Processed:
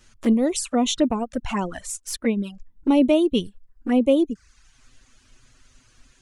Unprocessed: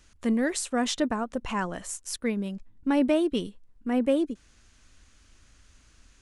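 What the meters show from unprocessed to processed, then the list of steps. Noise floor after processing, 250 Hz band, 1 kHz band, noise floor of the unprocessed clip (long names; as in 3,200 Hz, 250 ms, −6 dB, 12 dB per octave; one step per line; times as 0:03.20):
−60 dBFS, +6.0 dB, +3.5 dB, −60 dBFS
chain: flanger swept by the level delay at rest 9.1 ms, full sweep at −24 dBFS
reverb reduction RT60 0.61 s
level +7.5 dB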